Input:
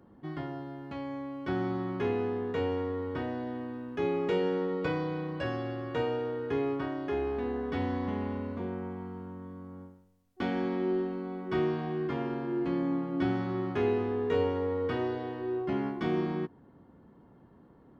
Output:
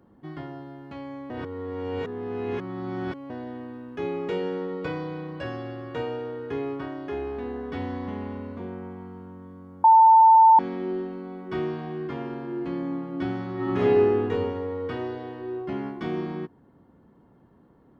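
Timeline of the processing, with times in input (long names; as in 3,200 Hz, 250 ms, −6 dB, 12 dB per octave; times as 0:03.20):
0:01.30–0:03.30: reverse
0:09.84–0:10.59: beep over 893 Hz −10.5 dBFS
0:13.55–0:14.23: thrown reverb, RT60 1.1 s, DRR −6 dB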